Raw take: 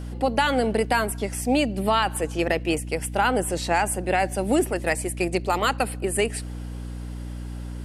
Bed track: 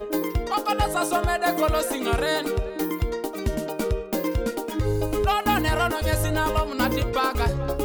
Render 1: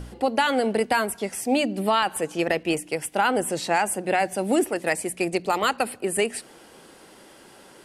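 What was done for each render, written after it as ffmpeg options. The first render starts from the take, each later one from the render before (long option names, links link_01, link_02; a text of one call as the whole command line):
ffmpeg -i in.wav -af "bandreject=frequency=60:width_type=h:width=4,bandreject=frequency=120:width_type=h:width=4,bandreject=frequency=180:width_type=h:width=4,bandreject=frequency=240:width_type=h:width=4,bandreject=frequency=300:width_type=h:width=4" out.wav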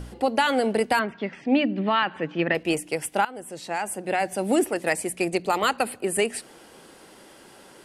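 ffmpeg -i in.wav -filter_complex "[0:a]asettb=1/sr,asplit=3[link_01][link_02][link_03];[link_01]atrim=end=0.994[link_04];[link_02]atrim=start=0.99:end=2.55,asetpts=PTS-STARTPTS,afade=type=in:duration=0.004:curve=qsin,afade=type=out:start_time=1.556:duration=0.004:curve=qsin,highpass=130,equalizer=frequency=160:width_type=q:width=4:gain=7,equalizer=frequency=280:width_type=q:width=4:gain=4,equalizer=frequency=450:width_type=q:width=4:gain=-4,equalizer=frequency=740:width_type=q:width=4:gain=-6,equalizer=frequency=1800:width_type=q:width=4:gain=4,lowpass=frequency=3400:width=0.5412,lowpass=frequency=3400:width=1.3066[link_05];[link_03]atrim=start=2.546[link_06];[link_04][link_05]acrossfade=duration=0.004:curve1=hsin:curve2=qsin[link_07];[link_07][link_06]acrossfade=duration=0.004:curve1=qsin:curve2=hsin,asettb=1/sr,asplit=3[link_08][link_09][link_10];[link_08]atrim=end=5.304[link_11];[link_09]atrim=start=5.3:end=6.04,asetpts=PTS-STARTPTS,afade=type=in:duration=0.004:curve=qsin,afade=type=out:start_time=0.736:duration=0.004:curve=qsin,bandreject=frequency=5400:width=12[link_12];[link_10]atrim=start=6.036[link_13];[link_11][link_12]acrossfade=duration=0.004:curve1=hsin:curve2=qsin[link_14];[link_14][link_13]acrossfade=duration=0.004:curve1=qsin:curve2=hsin,asplit=2[link_15][link_16];[link_15]atrim=end=3.25,asetpts=PTS-STARTPTS,afade=type=out:start_time=3.246:duration=0.004:curve=hsin:silence=0.1[link_17];[link_16]atrim=start=3.25,asetpts=PTS-STARTPTS,afade=type=in:duration=1.25:silence=0.1[link_18];[link_17][link_18]concat=n=2:v=0:a=1" out.wav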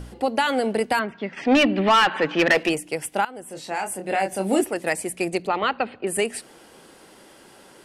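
ffmpeg -i in.wav -filter_complex "[0:a]asplit=3[link_01][link_02][link_03];[link_01]afade=type=out:start_time=1.36:duration=0.02[link_04];[link_02]asplit=2[link_05][link_06];[link_06]highpass=frequency=720:poles=1,volume=20dB,asoftclip=type=tanh:threshold=-8dB[link_07];[link_05][link_07]amix=inputs=2:normalize=0,lowpass=frequency=5100:poles=1,volume=-6dB,afade=type=in:start_time=1.36:duration=0.02,afade=type=out:start_time=2.68:duration=0.02[link_08];[link_03]afade=type=in:start_time=2.68:duration=0.02[link_09];[link_04][link_08][link_09]amix=inputs=3:normalize=0,asettb=1/sr,asplit=3[link_10][link_11][link_12];[link_10]atrim=end=3.484[link_13];[link_11]atrim=start=3.48:end=4.61,asetpts=PTS-STARTPTS,afade=type=in:duration=0.004:curve=qsin,afade=type=out:start_time=1.126:duration=0.004:curve=qsin,asplit=2[link_14][link_15];[link_15]adelay=26,volume=-5.5dB[link_16];[link_14][link_16]amix=inputs=2:normalize=0,atrim=end_sample=49833[link_17];[link_12]atrim=start=4.606[link_18];[link_13][link_17]acrossfade=duration=0.004:curve1=hsin:curve2=qsin[link_19];[link_19][link_18]acrossfade=duration=0.004:curve1=qsin:curve2=hsin,asettb=1/sr,asplit=3[link_20][link_21][link_22];[link_20]atrim=end=5.474[link_23];[link_21]atrim=start=5.47:end=6.07,asetpts=PTS-STARTPTS,afade=type=in:duration=0.004:curve=qsin,afade=type=out:start_time=0.596:duration=0.004:curve=qsin,lowpass=frequency=3700:width=0.5412,lowpass=frequency=3700:width=1.3066[link_24];[link_22]atrim=start=6.066[link_25];[link_23][link_24]acrossfade=duration=0.004:curve1=hsin:curve2=qsin[link_26];[link_26][link_25]acrossfade=duration=0.004:curve1=qsin:curve2=hsin" out.wav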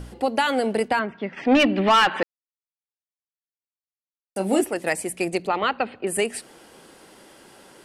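ffmpeg -i in.wav -filter_complex "[0:a]asettb=1/sr,asplit=3[link_01][link_02][link_03];[link_01]atrim=end=0.884[link_04];[link_02]atrim=start=0.88:end=1.6,asetpts=PTS-STARTPTS,afade=type=in:duration=0.004:curve=qsin,afade=type=out:start_time=0.716:duration=0.004:curve=qsin,aemphasis=mode=reproduction:type=50fm[link_05];[link_03]atrim=start=1.596[link_06];[link_04][link_05]acrossfade=duration=0.004:curve1=hsin:curve2=qsin[link_07];[link_07][link_06]acrossfade=duration=0.004:curve1=qsin:curve2=hsin,asplit=3[link_08][link_09][link_10];[link_08]atrim=end=2.23,asetpts=PTS-STARTPTS,afade=type=out:start_time=2.226:duration=0.004:curve=hsin[link_11];[link_09]atrim=start=2.23:end=4.36,asetpts=PTS-STARTPTS,volume=0[link_12];[link_10]atrim=start=4.36,asetpts=PTS-STARTPTS,afade=type=in:duration=0.004:curve=hsin[link_13];[link_11][link_12][link_13]concat=n=3:v=0:a=1" out.wav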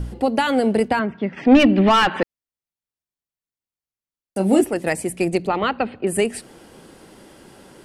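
ffmpeg -i in.wav -af "lowshelf=frequency=310:gain=11.5" out.wav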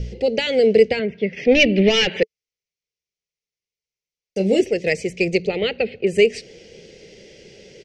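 ffmpeg -i in.wav -af "firequalizer=gain_entry='entry(190,0);entry(280,-10);entry(440,9);entry(750,-11);entry(1100,-25);entry(2100,8);entry(3600,3);entry(5900,9);entry(9800,-23)':delay=0.05:min_phase=1" out.wav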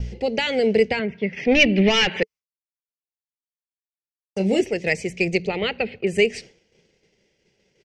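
ffmpeg -i in.wav -af "agate=range=-33dB:threshold=-32dB:ratio=3:detection=peak,equalizer=frequency=500:width_type=o:width=1:gain=-7,equalizer=frequency=1000:width_type=o:width=1:gain=9,equalizer=frequency=4000:width_type=o:width=1:gain=-3" out.wav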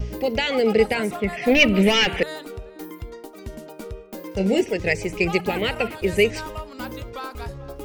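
ffmpeg -i in.wav -i bed.wav -filter_complex "[1:a]volume=-10dB[link_01];[0:a][link_01]amix=inputs=2:normalize=0" out.wav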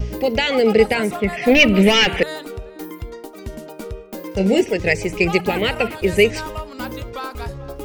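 ffmpeg -i in.wav -af "volume=4dB,alimiter=limit=-1dB:level=0:latency=1" out.wav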